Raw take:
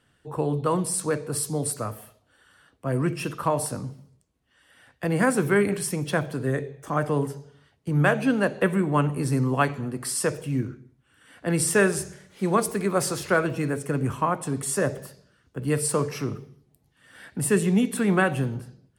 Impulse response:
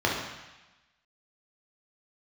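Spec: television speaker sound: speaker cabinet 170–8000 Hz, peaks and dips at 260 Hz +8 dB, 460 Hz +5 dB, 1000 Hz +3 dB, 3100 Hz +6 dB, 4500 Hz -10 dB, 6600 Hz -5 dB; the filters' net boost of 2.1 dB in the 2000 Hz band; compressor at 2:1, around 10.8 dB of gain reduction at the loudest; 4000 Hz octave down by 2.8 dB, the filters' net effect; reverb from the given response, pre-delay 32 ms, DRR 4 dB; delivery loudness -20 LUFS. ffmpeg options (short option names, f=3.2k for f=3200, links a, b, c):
-filter_complex "[0:a]equalizer=f=2k:t=o:g=3.5,equalizer=f=4k:t=o:g=-6,acompressor=threshold=-36dB:ratio=2,asplit=2[a][b];[1:a]atrim=start_sample=2205,adelay=32[c];[b][c]afir=irnorm=-1:irlink=0,volume=-18.5dB[d];[a][d]amix=inputs=2:normalize=0,highpass=f=170:w=0.5412,highpass=f=170:w=1.3066,equalizer=f=260:t=q:w=4:g=8,equalizer=f=460:t=q:w=4:g=5,equalizer=f=1k:t=q:w=4:g=3,equalizer=f=3.1k:t=q:w=4:g=6,equalizer=f=4.5k:t=q:w=4:g=-10,equalizer=f=6.6k:t=q:w=4:g=-5,lowpass=f=8k:w=0.5412,lowpass=f=8k:w=1.3066,volume=10.5dB"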